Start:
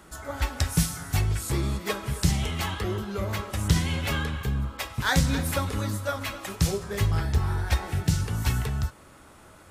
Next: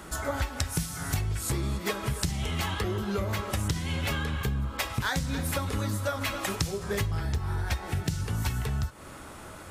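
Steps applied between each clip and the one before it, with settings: compression 10:1, threshold -33 dBFS, peak gain reduction 18 dB; trim +7 dB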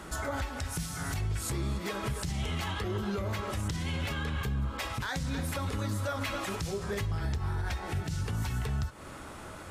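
treble shelf 11 kHz -8.5 dB; peak limiter -24.5 dBFS, peak gain reduction 10 dB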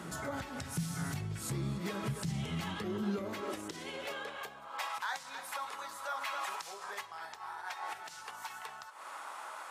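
compression 1.5:1, threshold -40 dBFS, peak gain reduction 4.5 dB; high-pass sweep 150 Hz -> 910 Hz, 2.58–4.90 s; trim -1.5 dB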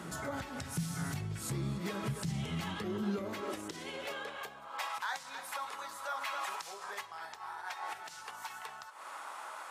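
no audible change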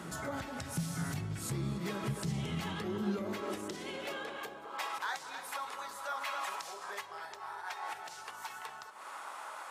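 band-passed feedback delay 203 ms, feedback 72%, band-pass 380 Hz, level -8 dB

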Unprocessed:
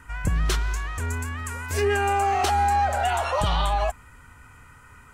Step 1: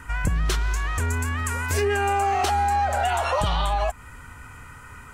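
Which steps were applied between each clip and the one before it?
compression 3:1, threshold -28 dBFS, peak gain reduction 7.5 dB; trim +6.5 dB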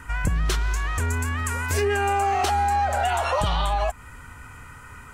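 no audible change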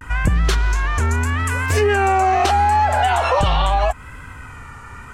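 treble shelf 9.1 kHz -12 dB; vibrato 0.78 Hz 84 cents; trim +6.5 dB

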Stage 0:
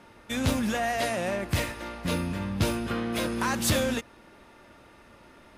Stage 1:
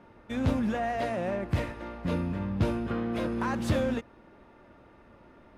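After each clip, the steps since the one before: low-pass 1 kHz 6 dB/octave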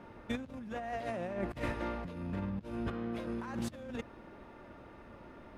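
compressor with a negative ratio -34 dBFS, ratio -0.5; trim -3 dB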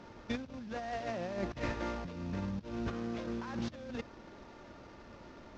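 CVSD coder 32 kbps

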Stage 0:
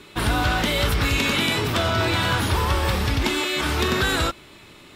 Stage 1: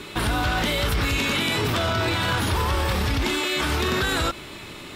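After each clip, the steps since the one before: peak limiter -23.5 dBFS, peak gain reduction 11.5 dB; trim +8 dB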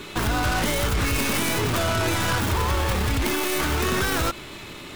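tracing distortion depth 0.36 ms

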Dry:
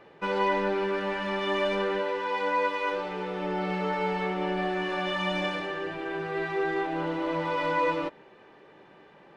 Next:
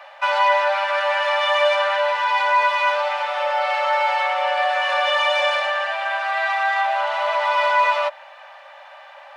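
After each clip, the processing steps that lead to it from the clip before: Chebyshev high-pass 550 Hz, order 10; in parallel at +1.5 dB: peak limiter -29 dBFS, peak gain reduction 11 dB; on the sum: trim +8 dB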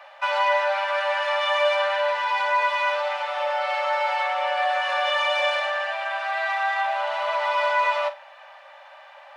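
flutter echo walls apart 7.9 m, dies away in 0.22 s; trim -4 dB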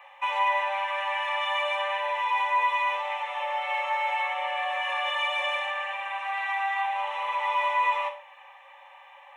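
static phaser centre 960 Hz, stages 8; on a send at -9 dB: reverberation, pre-delay 3 ms; on the sum: trim -1 dB

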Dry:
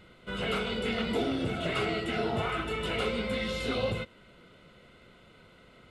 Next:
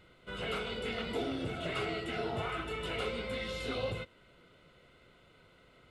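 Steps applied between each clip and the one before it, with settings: peaking EQ 210 Hz -7 dB 0.31 oct; trim -5 dB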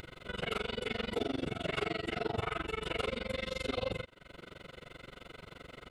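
AM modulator 23 Hz, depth 100%; upward compressor, threshold -42 dBFS; trim +4.5 dB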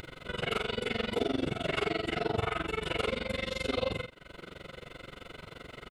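doubling 49 ms -7.5 dB; trim +3 dB

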